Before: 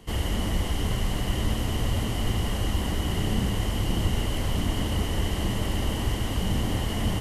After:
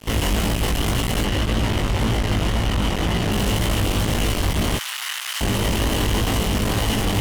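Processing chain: fuzz box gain 40 dB, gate -46 dBFS; 1.24–3.32 s: treble shelf 7.2 kHz -11 dB; 4.77–5.41 s: high-pass 1.2 kHz 24 dB/octave; chorus 1.9 Hz, delay 17.5 ms, depth 2.4 ms; trim -2.5 dB

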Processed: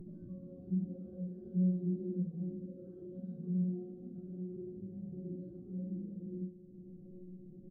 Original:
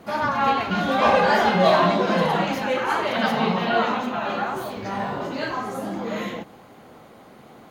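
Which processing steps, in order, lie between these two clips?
compression 3:1, threshold -27 dBFS, peak gain reduction 11 dB; inverse Chebyshev low-pass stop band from 830 Hz, stop band 50 dB; peaking EQ 220 Hz -6 dB 0.25 oct; inharmonic resonator 180 Hz, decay 0.36 s, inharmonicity 0.002; delay 484 ms -21 dB; Schroeder reverb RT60 0.39 s, combs from 32 ms, DRR 4.5 dB; upward compressor, threshold -50 dBFS; bass shelf 93 Hz +11 dB; trim +5 dB

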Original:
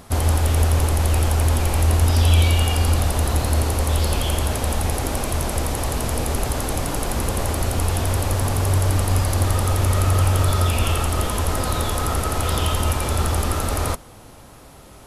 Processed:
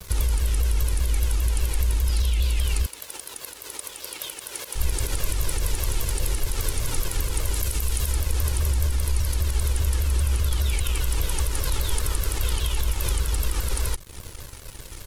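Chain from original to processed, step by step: 7.55–8.13 s: treble shelf 6.2 kHz +7.5 dB; compression 4:1, threshold -30 dBFS, peak gain reduction 16 dB; peaking EQ 690 Hz -13.5 dB 2.1 oct; comb 2 ms, depth 84%; peak limiter -23 dBFS, peak gain reduction 7.5 dB; frequency shift -25 Hz; 2.86–4.75 s: high-pass 390 Hz 12 dB/octave; crossover distortion -48.5 dBFS; vibrato with a chosen wave saw down 5 Hz, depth 250 cents; trim +9 dB

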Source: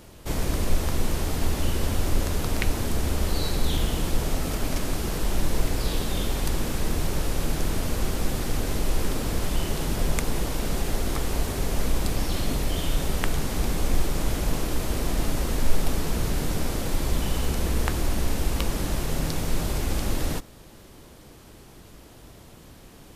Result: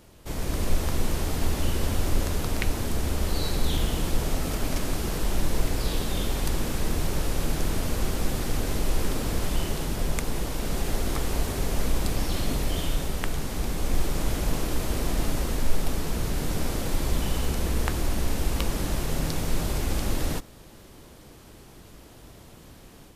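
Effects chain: level rider gain up to 5 dB; trim -5.5 dB

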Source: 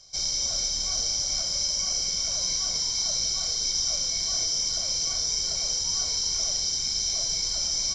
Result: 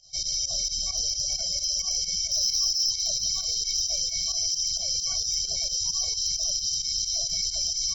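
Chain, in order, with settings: 2.31–2.91 s: peaking EQ 5.3 kHz +6 dB 0.2 oct; spectral gate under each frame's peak -20 dB strong; overload inside the chain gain 18.5 dB; volume shaper 132 bpm, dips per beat 2, -15 dB, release 69 ms; on a send: feedback echo behind a high-pass 716 ms, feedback 72%, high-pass 3 kHz, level -12.5 dB

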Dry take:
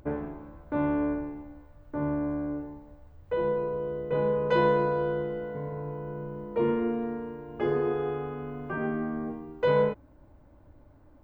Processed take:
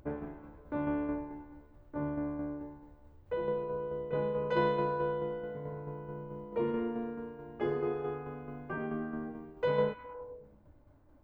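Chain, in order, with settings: tremolo saw down 4.6 Hz, depth 45%; repeats whose band climbs or falls 103 ms, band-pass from 3.2 kHz, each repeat -0.7 oct, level -8 dB; trim -4 dB

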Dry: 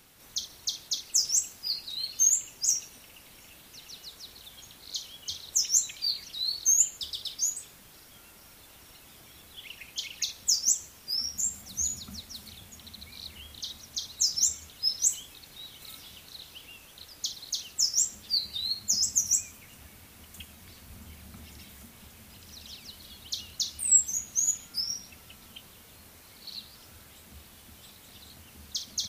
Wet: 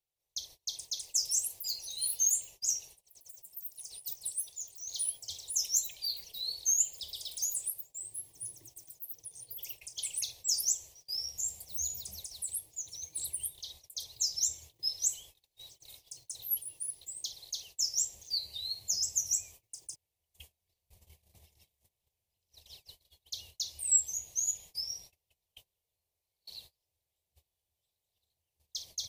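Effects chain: gate -45 dBFS, range -28 dB; ever faster or slower copies 546 ms, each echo +7 st, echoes 3, each echo -6 dB; static phaser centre 580 Hz, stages 4; trim -5 dB

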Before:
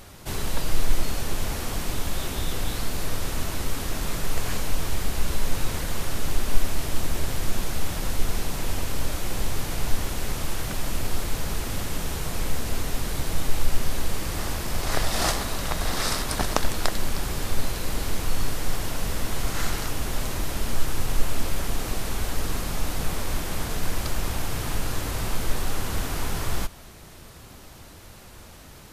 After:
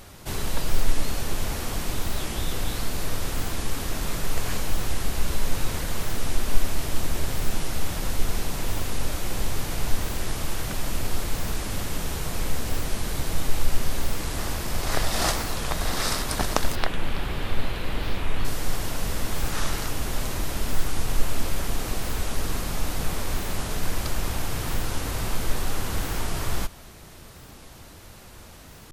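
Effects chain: 16.76–18.45 s: resonant high shelf 4.4 kHz -10.5 dB, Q 1.5; warped record 45 rpm, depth 250 cents

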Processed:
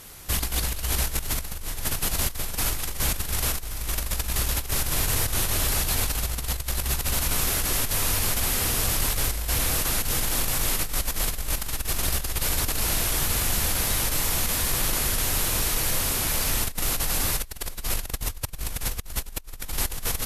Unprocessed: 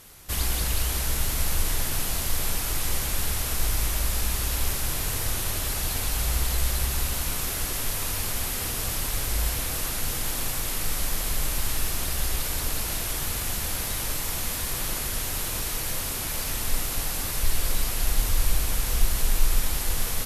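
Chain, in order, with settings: compressor with a negative ratio -27 dBFS, ratio -0.5; trim +2 dB

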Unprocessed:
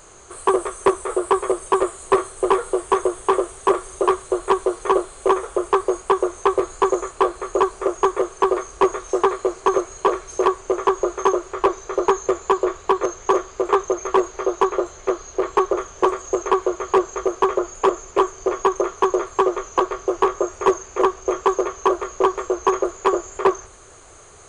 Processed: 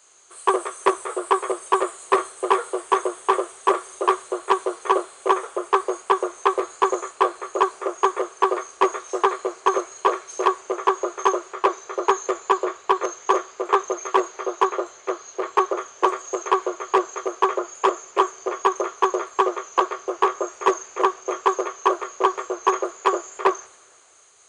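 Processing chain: frequency weighting A; three bands expanded up and down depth 40%

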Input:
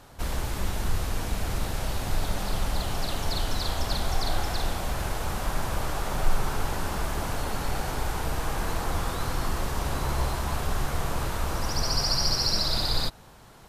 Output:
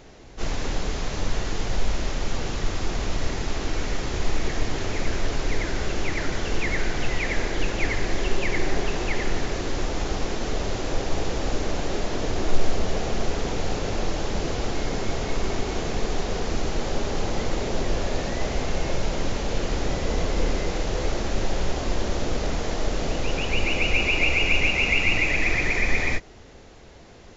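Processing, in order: speed mistake 15 ips tape played at 7.5 ips; trim +4 dB

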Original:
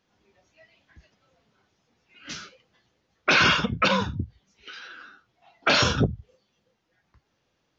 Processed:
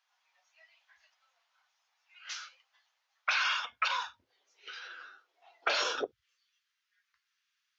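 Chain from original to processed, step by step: inverse Chebyshev high-pass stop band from 400 Hz, stop band 40 dB, from 4.22 s stop band from 200 Hz, from 6.11 s stop band from 690 Hz; compression, threshold -23 dBFS, peak gain reduction 7.5 dB; trim -3.5 dB

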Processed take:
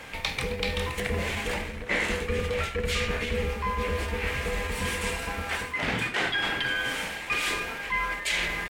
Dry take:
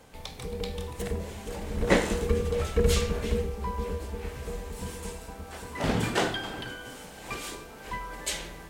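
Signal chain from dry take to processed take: peaking EQ 2.1 kHz +15 dB 1.5 oct; reverse; compression 12:1, threshold -31 dBFS, peak gain reduction 22 dB; reverse; pitch shift +0.5 st; trim +6.5 dB

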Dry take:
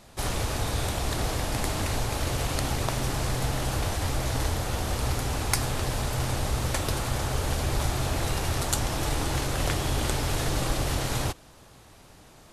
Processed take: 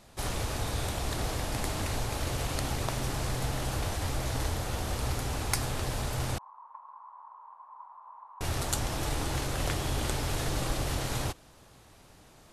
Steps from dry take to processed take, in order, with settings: 6.38–8.41 s: Butterworth band-pass 1 kHz, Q 6.2; trim -4 dB

